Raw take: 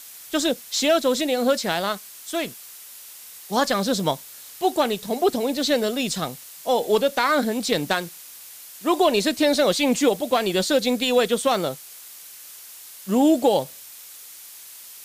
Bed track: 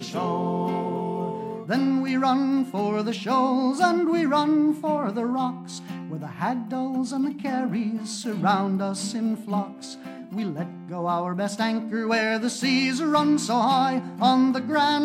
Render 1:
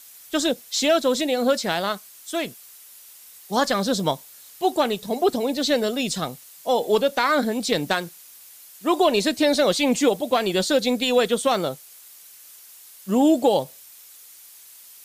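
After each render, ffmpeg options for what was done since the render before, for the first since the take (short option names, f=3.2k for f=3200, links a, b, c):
-af "afftdn=nr=6:nf=-43"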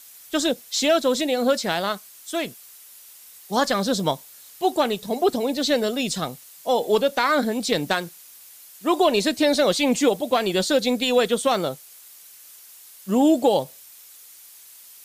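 -af anull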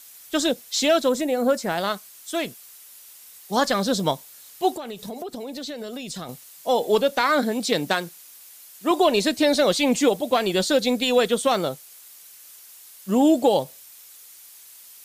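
-filter_complex "[0:a]asettb=1/sr,asplit=3[a][b][c];[a]atrim=end=1.094[d];[b]atrim=start=1.09:end=1.78,asetpts=PTS-STARTPTS,afade=t=in:d=0.004:c=qsin,afade=t=out:st=0.686:d=0.004:c=qsin,equalizer=f=3.7k:w=1.2:g=-11.5[e];[c]atrim=start=1.776[f];[d][e]acrossfade=d=0.004:c1=hsin:c2=qsin[g];[g][f]acrossfade=d=0.004:c1=qsin:c2=hsin,asettb=1/sr,asplit=3[h][i][j];[h]atrim=end=4.754[k];[i]atrim=start=4.75:end=6.29,asetpts=PTS-STARTPTS,afade=t=in:d=0.004:c=qsin,afade=t=out:st=1.536:d=0.004:c=qsin,acompressor=threshold=-29dB:ratio=16:attack=3.2:release=140:knee=1:detection=peak[l];[j]atrim=start=6.286[m];[k][l]acrossfade=d=0.004:c1=hsin:c2=qsin[n];[n][m]acrossfade=d=0.004:c1=qsin:c2=hsin,asettb=1/sr,asplit=3[o][p][q];[o]atrim=end=7.214[r];[p]atrim=start=7.21:end=8.91,asetpts=PTS-STARTPTS,afade=t=in:d=0.004:c=qsin,afade=t=out:st=1.696:d=0.004:c=qsin,highpass=120[s];[q]atrim=start=8.906[t];[r][s]acrossfade=d=0.004:c1=hsin:c2=qsin[u];[u][t]acrossfade=d=0.004:c1=qsin:c2=hsin"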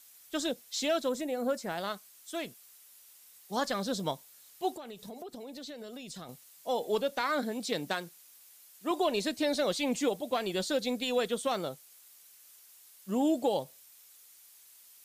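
-af "volume=-10.5dB"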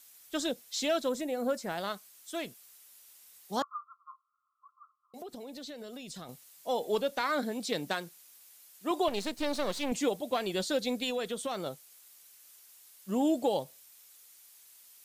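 -filter_complex "[0:a]asettb=1/sr,asplit=3[a][b][c];[a]atrim=end=3.624[d];[b]atrim=start=3.62:end=5.14,asetpts=PTS-STARTPTS,afade=t=in:d=0.004:c=qsin,afade=t=out:st=1.516:d=0.004:c=qsin,asuperpass=centerf=1200:order=20:qfactor=3.4[e];[c]atrim=start=5.136[f];[d][e]acrossfade=d=0.004:c1=hsin:c2=qsin[g];[g][f]acrossfade=d=0.004:c1=qsin:c2=hsin,asettb=1/sr,asplit=3[h][i][j];[h]atrim=end=9.084[k];[i]atrim=start=9.08:end=9.92,asetpts=PTS-STARTPTS,afade=t=in:d=0.004:c=qsin,afade=t=out:st=0.836:d=0.004:c=qsin,aeval=exprs='if(lt(val(0),0),0.251*val(0),val(0))':c=same[l];[j]atrim=start=9.916[m];[k][l]acrossfade=d=0.004:c1=hsin:c2=qsin[n];[n][m]acrossfade=d=0.004:c1=qsin:c2=hsin,asettb=1/sr,asplit=3[o][p][q];[o]atrim=end=11.104[r];[p]atrim=start=11.1:end=11.66,asetpts=PTS-STARTPTS,afade=t=in:d=0.004:c=qsin,afade=t=out:st=0.556:d=0.004:c=qsin,acompressor=threshold=-33dB:ratio=2:attack=3.2:release=140:knee=1:detection=peak[s];[q]atrim=start=11.656[t];[r][s]acrossfade=d=0.004:c1=hsin:c2=qsin[u];[u][t]acrossfade=d=0.004:c1=qsin:c2=hsin"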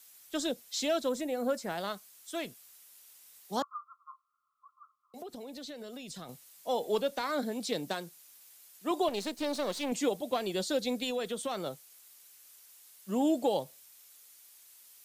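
-filter_complex "[0:a]acrossover=split=150|980|3300[a][b][c][d];[a]acompressor=threshold=-52dB:ratio=6[e];[c]alimiter=level_in=8dB:limit=-24dB:level=0:latency=1:release=332,volume=-8dB[f];[e][b][f][d]amix=inputs=4:normalize=0"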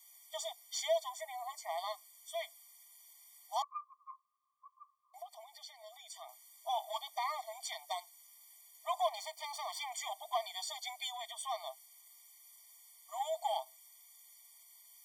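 -af "aeval=exprs='0.133*(cos(1*acos(clip(val(0)/0.133,-1,1)))-cos(1*PI/2))+0.00299*(cos(8*acos(clip(val(0)/0.133,-1,1)))-cos(8*PI/2))':c=same,afftfilt=real='re*eq(mod(floor(b*sr/1024/610),2),1)':imag='im*eq(mod(floor(b*sr/1024/610),2),1)':win_size=1024:overlap=0.75"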